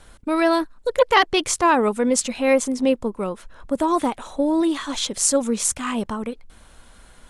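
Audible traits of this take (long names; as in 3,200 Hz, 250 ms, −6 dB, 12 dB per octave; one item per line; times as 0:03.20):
Nellymoser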